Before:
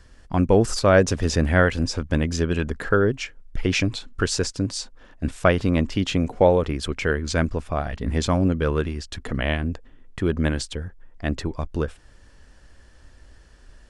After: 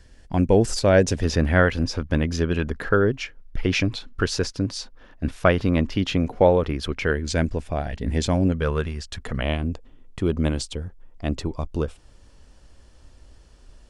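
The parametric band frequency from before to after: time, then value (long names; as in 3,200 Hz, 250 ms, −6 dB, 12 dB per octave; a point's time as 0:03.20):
parametric band −9.5 dB 0.49 octaves
1,200 Hz
from 0:01.22 7,900 Hz
from 0:07.14 1,200 Hz
from 0:08.52 300 Hz
from 0:09.41 1,700 Hz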